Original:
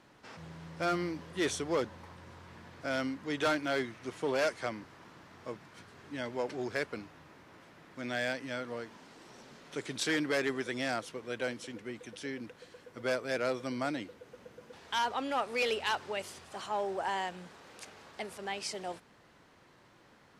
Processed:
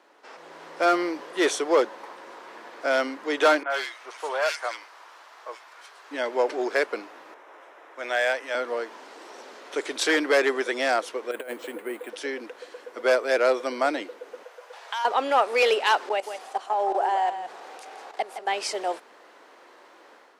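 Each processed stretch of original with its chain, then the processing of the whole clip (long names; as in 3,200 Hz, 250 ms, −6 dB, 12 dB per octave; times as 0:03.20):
0:03.63–0:06.11: high-pass filter 900 Hz + multiband delay without the direct sound lows, highs 70 ms, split 1,900 Hz
0:07.34–0:08.55: high-pass filter 460 Hz + parametric band 4,500 Hz −10 dB 0.21 octaves + one half of a high-frequency compander decoder only
0:11.31–0:12.10: compressor whose output falls as the input rises −39 dBFS, ratio −0.5 + high-frequency loss of the air 220 metres + bad sample-rate conversion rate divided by 4×, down filtered, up hold
0:14.43–0:15.05: high-pass filter 560 Hz 24 dB per octave + downward compressor 5 to 1, threshold −37 dBFS
0:16.09–0:18.48: parametric band 760 Hz +10.5 dB 0.24 octaves + output level in coarse steps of 18 dB + single-tap delay 166 ms −9.5 dB
whole clip: automatic gain control gain up to 7 dB; high-pass filter 330 Hz 24 dB per octave; parametric band 710 Hz +5.5 dB 2.7 octaves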